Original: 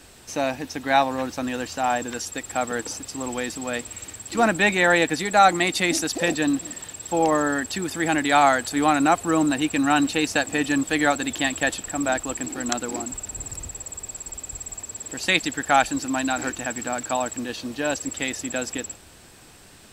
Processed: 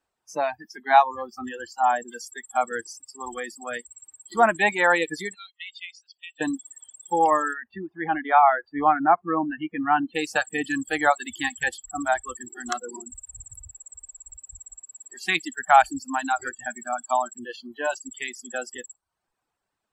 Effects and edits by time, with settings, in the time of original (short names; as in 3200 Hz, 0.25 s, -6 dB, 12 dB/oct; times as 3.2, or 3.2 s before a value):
5.34–6.41 ladder band-pass 3300 Hz, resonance 55%
7.53–10.15 air absorption 430 m
whole clip: reverb removal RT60 0.79 s; bell 960 Hz +13 dB 1.9 oct; spectral noise reduction 29 dB; gain -7.5 dB